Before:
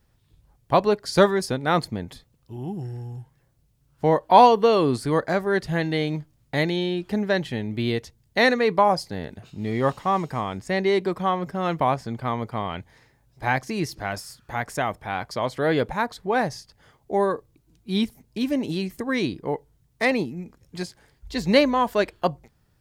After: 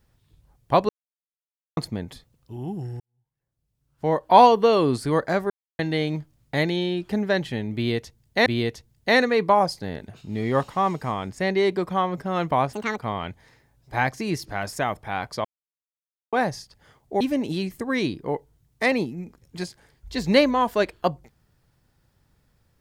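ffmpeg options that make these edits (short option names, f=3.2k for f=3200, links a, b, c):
-filter_complex "[0:a]asplit=13[a][b][c][d][e][f][g][h][i][j][k][l][m];[a]atrim=end=0.89,asetpts=PTS-STARTPTS,afade=t=out:st=0.886:d=0.004:c=hsin[n];[b]atrim=start=0.89:end=1.77,asetpts=PTS-STARTPTS,volume=0[o];[c]atrim=start=1.77:end=3,asetpts=PTS-STARTPTS,afade=t=in:d=0.004:c=hsin,afade=t=out:st=1.226:d=0.004:c=hsin[p];[d]atrim=start=3:end=5.5,asetpts=PTS-STARTPTS,afade=t=in:d=1.32:c=qua,afade=t=out:st=2.496:d=0.004:c=hsin[q];[e]atrim=start=5.5:end=5.79,asetpts=PTS-STARTPTS,volume=0[r];[f]atrim=start=5.79:end=8.462,asetpts=PTS-STARTPTS,afade=t=in:d=0.004:c=hsin[s];[g]atrim=start=7.748:end=12.024[t];[h]atrim=start=12.02:end=12.47,asetpts=PTS-STARTPTS,asetrate=80703,aresample=44100,atrim=end_sample=10844,asetpts=PTS-STARTPTS[u];[i]atrim=start=12.466:end=14.222[v];[j]atrim=start=14.708:end=15.43,asetpts=PTS-STARTPTS,afade=t=out:st=0.718:d=0.004:c=hsin[w];[k]atrim=start=15.43:end=16.31,asetpts=PTS-STARTPTS,volume=0[x];[l]atrim=start=16.31:end=17.192,asetpts=PTS-STARTPTS,afade=t=in:d=0.004:c=hsin[y];[m]atrim=start=18.398[z];[n][o][p][q][r][s]concat=n=6:v=0:a=1[aa];[aa][t]acrossfade=d=0.004:c1=hsin:c2=hsin[ab];[ab][u]acrossfade=d=0.004:c1=hsin:c2=hsin[ac];[ac][v]acrossfade=d=0.004:c1=hsin:c2=hsin[ad];[w][x][y]concat=n=3:v=0:a=1[ae];[ad][ae]acrossfade=d=0.004:c1=hsin:c2=hsin[af];[af][z]acrossfade=d=0.004:c1=hsin:c2=hsin"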